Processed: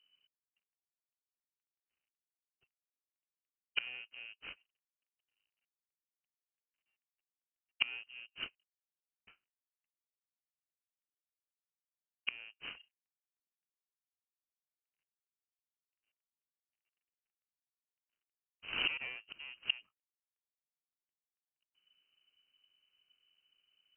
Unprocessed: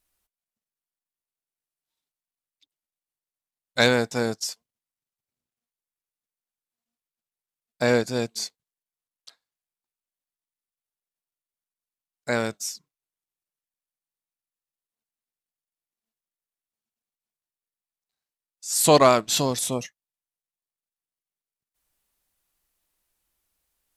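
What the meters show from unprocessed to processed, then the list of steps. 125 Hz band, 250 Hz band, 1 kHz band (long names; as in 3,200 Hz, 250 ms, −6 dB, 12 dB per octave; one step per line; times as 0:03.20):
−36.0 dB, −35.0 dB, −29.5 dB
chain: running median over 41 samples
gate with flip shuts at −28 dBFS, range −31 dB
voice inversion scrambler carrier 3,000 Hz
level +7.5 dB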